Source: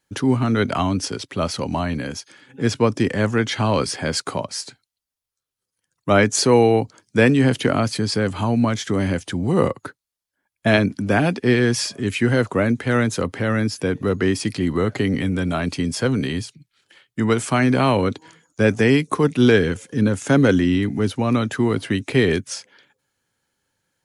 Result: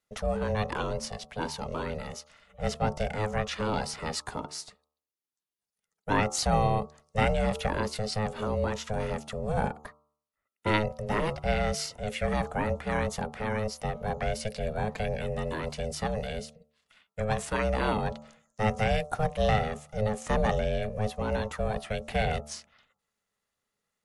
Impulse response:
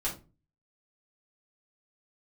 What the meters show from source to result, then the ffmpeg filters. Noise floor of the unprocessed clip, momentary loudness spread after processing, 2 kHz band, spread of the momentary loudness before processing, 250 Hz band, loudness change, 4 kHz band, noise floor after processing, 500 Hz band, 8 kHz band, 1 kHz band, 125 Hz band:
-85 dBFS, 9 LU, -10.5 dB, 10 LU, -15.5 dB, -10.5 dB, -10.0 dB, under -85 dBFS, -9.5 dB, -10.0 dB, -4.5 dB, -10.5 dB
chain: -af "aeval=exprs='val(0)*sin(2*PI*320*n/s)':c=same,bandreject=f=74.83:t=h:w=4,bandreject=f=149.66:t=h:w=4,bandreject=f=224.49:t=h:w=4,bandreject=f=299.32:t=h:w=4,bandreject=f=374.15:t=h:w=4,bandreject=f=448.98:t=h:w=4,bandreject=f=523.81:t=h:w=4,bandreject=f=598.64:t=h:w=4,bandreject=f=673.47:t=h:w=4,bandreject=f=748.3:t=h:w=4,bandreject=f=823.13:t=h:w=4,bandreject=f=897.96:t=h:w=4,bandreject=f=972.79:t=h:w=4,bandreject=f=1047.62:t=h:w=4,bandreject=f=1122.45:t=h:w=4,bandreject=f=1197.28:t=h:w=4,bandreject=f=1272.11:t=h:w=4,bandreject=f=1346.94:t=h:w=4,volume=0.447"

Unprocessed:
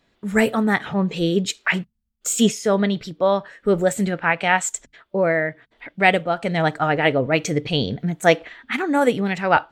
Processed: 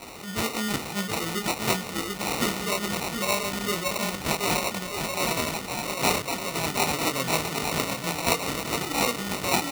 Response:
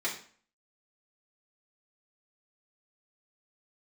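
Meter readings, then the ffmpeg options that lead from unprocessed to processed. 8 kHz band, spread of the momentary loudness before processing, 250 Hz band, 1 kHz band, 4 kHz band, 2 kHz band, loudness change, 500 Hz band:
0.0 dB, 7 LU, -9.0 dB, -5.5 dB, +0.5 dB, -7.0 dB, -6.0 dB, -10.0 dB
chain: -filter_complex "[0:a]aeval=exprs='val(0)+0.5*0.0562*sgn(val(0))':c=same,equalizer=f=840:w=1:g=-4.5,aecho=1:1:730|1241|1599|1849|2024:0.631|0.398|0.251|0.158|0.1,acrossover=split=560|850[s0][s1][s2];[s2]acontrast=85[s3];[s0][s1][s3]amix=inputs=3:normalize=0,flanger=delay=20:depth=5.4:speed=0.45,adynamicsmooth=sensitivity=3:basefreq=2500,lowpass=9300,acrusher=samples=27:mix=1:aa=0.000001,highpass=f=83:p=1,tiltshelf=f=1100:g=-5.5,volume=0.501"

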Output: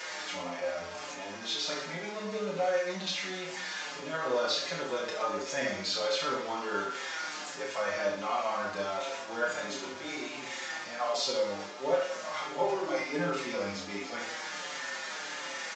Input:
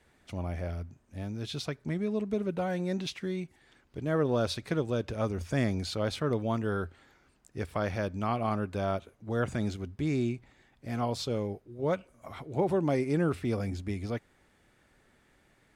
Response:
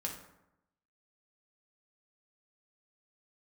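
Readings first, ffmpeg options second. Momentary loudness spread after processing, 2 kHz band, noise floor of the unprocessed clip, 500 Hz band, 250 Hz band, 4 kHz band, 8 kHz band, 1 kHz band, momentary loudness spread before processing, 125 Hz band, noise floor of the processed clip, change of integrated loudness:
7 LU, +7.0 dB, -67 dBFS, 0.0 dB, -9.0 dB, +8.0 dB, +9.0 dB, +3.5 dB, 11 LU, -16.0 dB, -41 dBFS, -1.0 dB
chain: -filter_complex "[0:a]aeval=exprs='val(0)+0.5*0.0141*sgn(val(0))':c=same,highpass=610,equalizer=f=5500:w=1.5:g=2.5,asplit=2[s0][s1];[s1]alimiter=level_in=1.5:limit=0.0631:level=0:latency=1,volume=0.668,volume=0.75[s2];[s0][s2]amix=inputs=2:normalize=0,aecho=1:1:30|69|119.7|185.6|271.3:0.631|0.398|0.251|0.158|0.1[s3];[1:a]atrim=start_sample=2205,afade=t=out:st=0.15:d=0.01,atrim=end_sample=7056[s4];[s3][s4]afir=irnorm=-1:irlink=0,aresample=16000,aresample=44100,areverse,acompressor=mode=upward:threshold=0.0316:ratio=2.5,areverse,asplit=2[s5][s6];[s6]adelay=5.7,afreqshift=-1.4[s7];[s5][s7]amix=inputs=2:normalize=1"

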